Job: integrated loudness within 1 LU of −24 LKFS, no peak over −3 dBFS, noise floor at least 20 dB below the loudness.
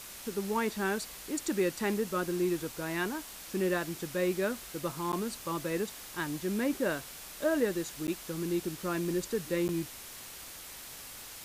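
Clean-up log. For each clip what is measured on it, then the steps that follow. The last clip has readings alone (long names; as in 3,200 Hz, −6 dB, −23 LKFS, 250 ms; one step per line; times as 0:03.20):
number of dropouts 3; longest dropout 9.8 ms; background noise floor −47 dBFS; target noise floor −54 dBFS; integrated loudness −33.5 LKFS; sample peak −17.0 dBFS; target loudness −24.0 LKFS
→ repair the gap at 0:05.12/0:08.07/0:09.68, 9.8 ms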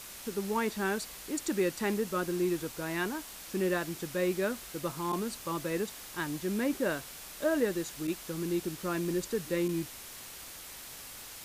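number of dropouts 0; background noise floor −47 dBFS; target noise floor −54 dBFS
→ broadband denoise 7 dB, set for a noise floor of −47 dBFS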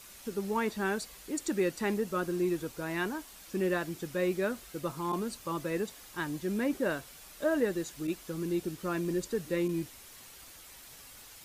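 background noise floor −52 dBFS; target noise floor −54 dBFS
→ broadband denoise 6 dB, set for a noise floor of −52 dBFS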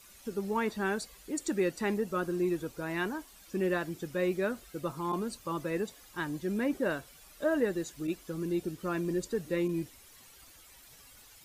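background noise floor −56 dBFS; integrated loudness −33.5 LKFS; sample peak −17.5 dBFS; target loudness −24.0 LKFS
→ level +9.5 dB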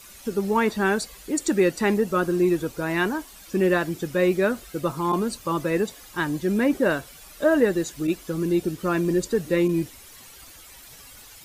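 integrated loudness −24.0 LKFS; sample peak −8.0 dBFS; background noise floor −46 dBFS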